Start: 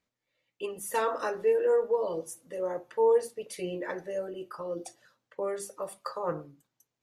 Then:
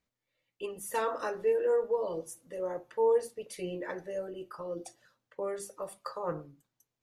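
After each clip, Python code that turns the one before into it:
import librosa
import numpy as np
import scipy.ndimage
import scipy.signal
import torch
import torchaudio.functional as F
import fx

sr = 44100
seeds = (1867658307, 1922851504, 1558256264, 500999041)

y = fx.low_shelf(x, sr, hz=79.0, db=10.0)
y = F.gain(torch.from_numpy(y), -3.0).numpy()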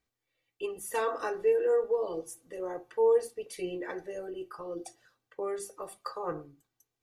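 y = x + 0.45 * np.pad(x, (int(2.6 * sr / 1000.0), 0))[:len(x)]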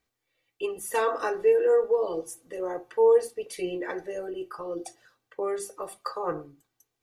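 y = fx.bass_treble(x, sr, bass_db=-3, treble_db=-1)
y = F.gain(torch.from_numpy(y), 5.0).numpy()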